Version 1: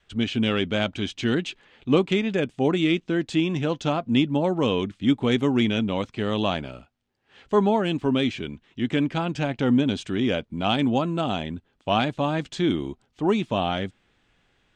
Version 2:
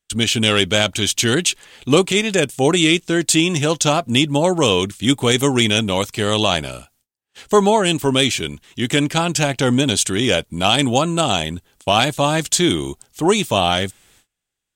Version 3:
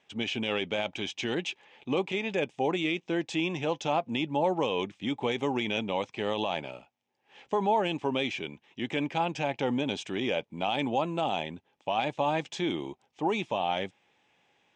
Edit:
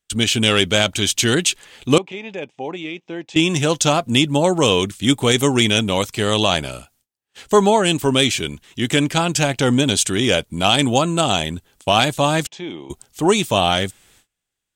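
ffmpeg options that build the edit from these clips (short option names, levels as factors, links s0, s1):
-filter_complex "[2:a]asplit=2[s0][s1];[1:a]asplit=3[s2][s3][s4];[s2]atrim=end=1.982[s5];[s0]atrim=start=1.978:end=3.362[s6];[s3]atrim=start=3.358:end=12.472[s7];[s1]atrim=start=12.468:end=12.902[s8];[s4]atrim=start=12.898[s9];[s5][s6]acrossfade=d=0.004:c1=hsin:c2=hsin[s10];[s10][s7]acrossfade=d=0.004:c1=hsin:c2=hsin[s11];[s11][s8]acrossfade=d=0.004:c1=hsin:c2=hsin[s12];[s12][s9]acrossfade=d=0.004:c1=hsin:c2=hsin"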